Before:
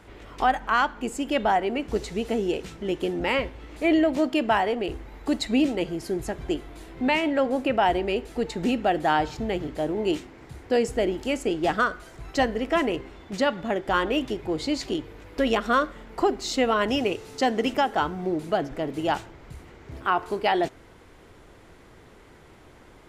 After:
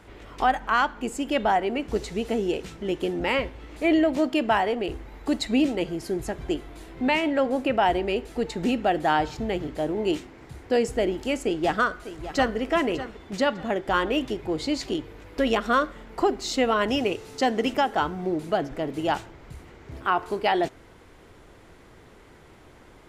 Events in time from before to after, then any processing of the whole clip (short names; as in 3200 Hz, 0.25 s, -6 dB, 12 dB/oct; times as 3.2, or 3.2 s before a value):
11.44–12.56 echo throw 0.6 s, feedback 30%, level -13 dB